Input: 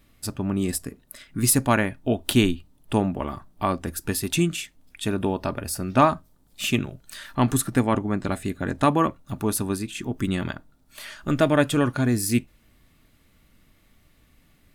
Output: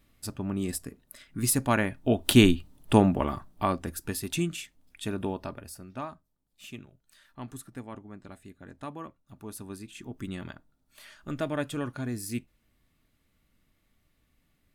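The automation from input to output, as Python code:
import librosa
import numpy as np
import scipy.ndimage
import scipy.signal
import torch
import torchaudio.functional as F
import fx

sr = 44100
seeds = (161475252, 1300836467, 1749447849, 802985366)

y = fx.gain(x, sr, db=fx.line((1.57, -6.0), (2.52, 2.5), (3.09, 2.5), (4.13, -7.0), (5.31, -7.0), (6.03, -20.0), (9.22, -20.0), (9.96, -11.5)))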